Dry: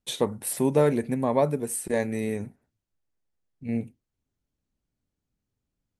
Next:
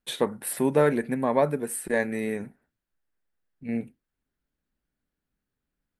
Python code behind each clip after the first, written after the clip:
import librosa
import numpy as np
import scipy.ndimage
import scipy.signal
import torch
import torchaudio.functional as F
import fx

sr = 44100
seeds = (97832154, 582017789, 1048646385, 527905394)

y = fx.graphic_eq_15(x, sr, hz=(100, 1600, 6300), db=(-10, 8, -7))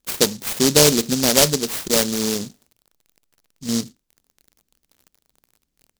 y = fx.dmg_crackle(x, sr, seeds[0], per_s=42.0, level_db=-43.0)
y = fx.noise_mod_delay(y, sr, seeds[1], noise_hz=5300.0, depth_ms=0.27)
y = y * 10.0 ** (7.0 / 20.0)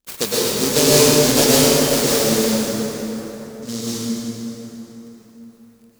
y = fx.rev_plate(x, sr, seeds[2], rt60_s=4.1, hf_ratio=0.6, predelay_ms=95, drr_db=-9.0)
y = y * 10.0 ** (-6.0 / 20.0)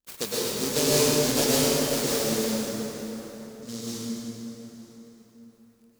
y = x + 10.0 ** (-22.5 / 20.0) * np.pad(x, (int(915 * sr / 1000.0), 0))[:len(x)]
y = y * 10.0 ** (-9.0 / 20.0)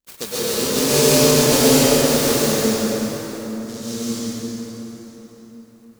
y = fx.rev_plate(x, sr, seeds[3], rt60_s=1.9, hf_ratio=0.65, predelay_ms=115, drr_db=-6.5)
y = y * 10.0 ** (1.5 / 20.0)